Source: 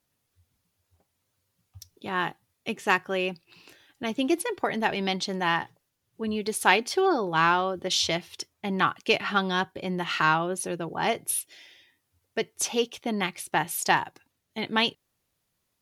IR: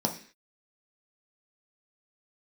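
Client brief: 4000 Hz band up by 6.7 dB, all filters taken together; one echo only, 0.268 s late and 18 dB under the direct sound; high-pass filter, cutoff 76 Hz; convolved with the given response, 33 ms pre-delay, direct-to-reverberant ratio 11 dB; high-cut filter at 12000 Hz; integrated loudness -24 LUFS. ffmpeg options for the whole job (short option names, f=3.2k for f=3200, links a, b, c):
-filter_complex "[0:a]highpass=76,lowpass=12k,equalizer=f=4k:t=o:g=9,aecho=1:1:268:0.126,asplit=2[a][b];[1:a]atrim=start_sample=2205,adelay=33[c];[b][c]afir=irnorm=-1:irlink=0,volume=-19dB[d];[a][d]amix=inputs=2:normalize=0"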